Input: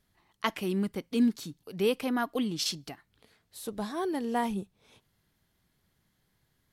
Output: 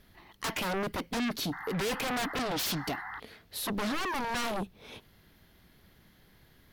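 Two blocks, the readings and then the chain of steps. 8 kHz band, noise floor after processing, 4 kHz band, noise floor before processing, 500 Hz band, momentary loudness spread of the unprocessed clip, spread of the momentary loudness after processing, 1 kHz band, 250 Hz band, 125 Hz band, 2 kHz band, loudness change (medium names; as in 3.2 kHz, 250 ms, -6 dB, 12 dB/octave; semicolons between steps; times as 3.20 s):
+2.5 dB, -62 dBFS, +2.0 dB, -75 dBFS, -3.0 dB, 15 LU, 11 LU, +1.5 dB, -5.0 dB, +0.5 dB, +5.0 dB, -1.5 dB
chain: ten-band graphic EQ 125 Hz -5 dB, 1 kHz -3 dB, 8 kHz -12 dB; saturation -30 dBFS, distortion -9 dB; painted sound noise, 1.52–3.20 s, 720–2100 Hz -56 dBFS; sine folder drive 11 dB, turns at -28.5 dBFS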